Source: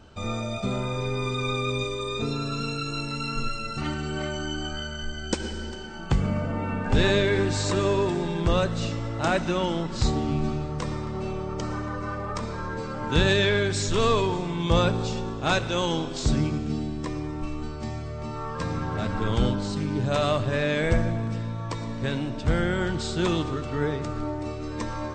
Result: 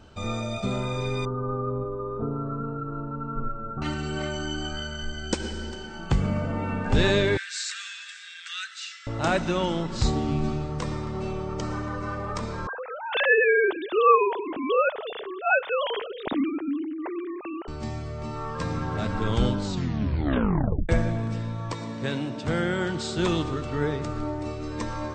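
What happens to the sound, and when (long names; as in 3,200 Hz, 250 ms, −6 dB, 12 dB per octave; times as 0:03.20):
0:01.25–0:03.82: elliptic low-pass filter 1,400 Hz
0:07.37–0:09.07: Butterworth high-pass 1,400 Hz 72 dB per octave
0:12.67–0:17.68: three sine waves on the formant tracks
0:19.65: tape stop 1.24 s
0:21.73–0:23.18: high-pass filter 130 Hz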